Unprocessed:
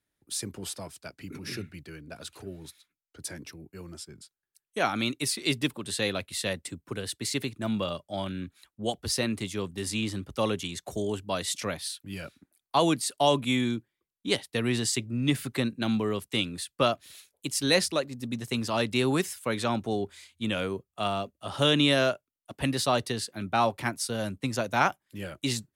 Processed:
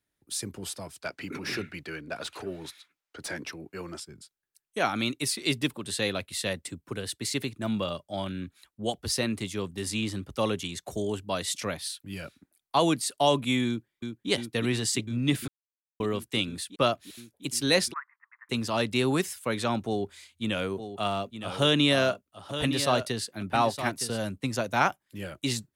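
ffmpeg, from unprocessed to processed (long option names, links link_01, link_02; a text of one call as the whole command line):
ffmpeg -i in.wav -filter_complex "[0:a]asettb=1/sr,asplit=3[link_01][link_02][link_03];[link_01]atrim=end=1.014[link_04];[link_02]atrim=start=1.01:end=4,asetpts=PTS-STARTPTS,afade=type=in:duration=0.004:curve=qsin,afade=type=out:start_time=2.986:duration=0.004:curve=qsin,asplit=2[link_05][link_06];[link_06]highpass=frequency=720:poles=1,volume=18dB,asoftclip=type=tanh:threshold=-19dB[link_07];[link_05][link_07]amix=inputs=2:normalize=0,lowpass=frequency=2500:poles=1,volume=-6dB[link_08];[link_03]atrim=start=3.996[link_09];[link_04][link_08]acrossfade=duration=0.004:curve1=hsin:curve2=qsin[link_10];[link_10][link_09]acrossfade=duration=0.004:curve1=qsin:curve2=hsin,asplit=2[link_11][link_12];[link_12]afade=type=in:start_time=13.67:duration=0.01,afade=type=out:start_time=14.3:duration=0.01,aecho=0:1:350|700|1050|1400|1750|2100|2450|2800|3150|3500|3850|4200:0.530884|0.451252|0.383564|0.326029|0.277125|0.235556|0.200223|0.170189|0.144661|0.122962|0.104518|0.0888399[link_13];[link_11][link_13]amix=inputs=2:normalize=0,asplit=3[link_14][link_15][link_16];[link_14]afade=type=out:start_time=17.92:duration=0.02[link_17];[link_15]asuperpass=centerf=1400:order=12:qfactor=1.3,afade=type=in:start_time=17.92:duration=0.02,afade=type=out:start_time=18.49:duration=0.02[link_18];[link_16]afade=type=in:start_time=18.49:duration=0.02[link_19];[link_17][link_18][link_19]amix=inputs=3:normalize=0,asplit=3[link_20][link_21][link_22];[link_20]afade=type=out:start_time=20.76:duration=0.02[link_23];[link_21]aecho=1:1:914:0.316,afade=type=in:start_time=20.76:duration=0.02,afade=type=out:start_time=24.21:duration=0.02[link_24];[link_22]afade=type=in:start_time=24.21:duration=0.02[link_25];[link_23][link_24][link_25]amix=inputs=3:normalize=0,asplit=3[link_26][link_27][link_28];[link_26]atrim=end=15.48,asetpts=PTS-STARTPTS,afade=type=out:start_time=15.476:duration=0.004:curve=hsin[link_29];[link_27]atrim=start=15.48:end=16,asetpts=PTS-STARTPTS,volume=0[link_30];[link_28]atrim=start=16,asetpts=PTS-STARTPTS,afade=type=in:duration=0.004:curve=hsin[link_31];[link_29][link_30][link_31]concat=n=3:v=0:a=1" out.wav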